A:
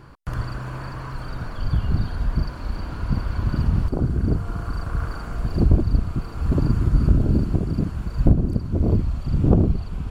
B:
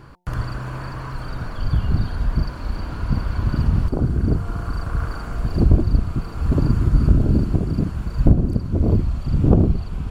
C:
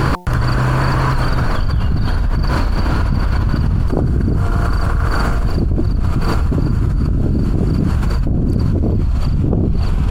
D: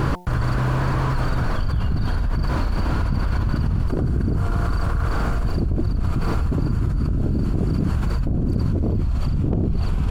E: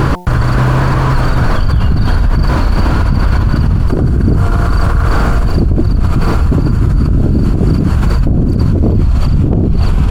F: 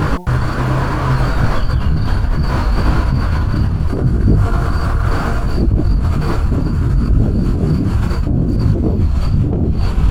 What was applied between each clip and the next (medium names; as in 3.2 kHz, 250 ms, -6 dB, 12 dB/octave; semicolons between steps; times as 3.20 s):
de-hum 178.6 Hz, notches 5; trim +2 dB
level flattener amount 100%; trim -6 dB
slew-rate limiter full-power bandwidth 110 Hz; trim -5.5 dB
loudness maximiser +12.5 dB; trim -1 dB
detune thickener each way 24 cents